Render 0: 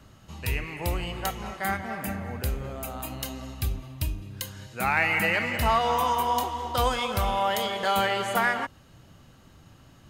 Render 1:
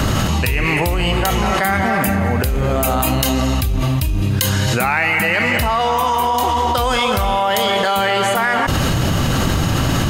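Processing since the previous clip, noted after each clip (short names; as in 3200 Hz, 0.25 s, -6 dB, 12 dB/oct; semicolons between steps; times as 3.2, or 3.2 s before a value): fast leveller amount 100%; gain +4 dB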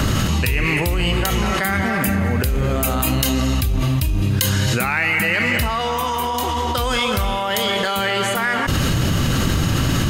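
dynamic EQ 770 Hz, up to -7 dB, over -32 dBFS, Q 1.4; gain -1 dB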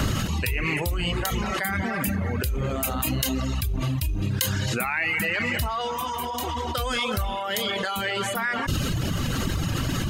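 reverb removal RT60 1 s; gain -5 dB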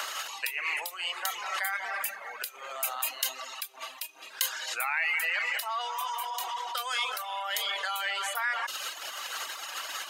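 HPF 730 Hz 24 dB/oct; gain -3 dB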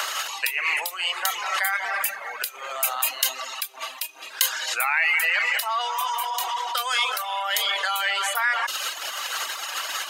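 low shelf 280 Hz -5.5 dB; gain +7.5 dB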